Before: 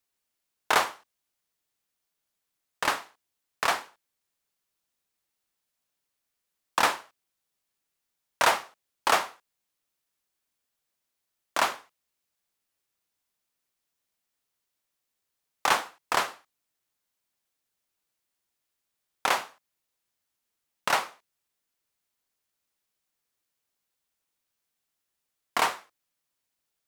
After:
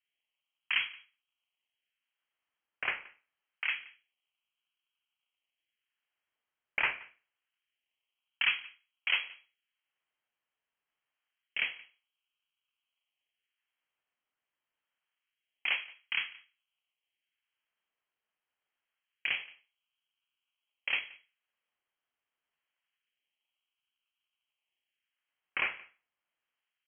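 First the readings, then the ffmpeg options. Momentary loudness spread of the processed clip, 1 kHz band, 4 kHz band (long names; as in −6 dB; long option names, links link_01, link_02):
14 LU, −20.5 dB, −3.5 dB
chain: -filter_complex "[0:a]acrossover=split=210|1600[link_01][link_02][link_03];[link_03]acrusher=samples=18:mix=1:aa=0.000001:lfo=1:lforange=28.8:lforate=0.26[link_04];[link_01][link_02][link_04]amix=inputs=3:normalize=0,asplit=2[link_05][link_06];[link_06]adelay=174.9,volume=-22dB,highshelf=frequency=4000:gain=-3.94[link_07];[link_05][link_07]amix=inputs=2:normalize=0,lowpass=frequency=2800:width_type=q:width=0.5098,lowpass=frequency=2800:width_type=q:width=0.6013,lowpass=frequency=2800:width_type=q:width=0.9,lowpass=frequency=2800:width_type=q:width=2.563,afreqshift=-3300,volume=-6.5dB"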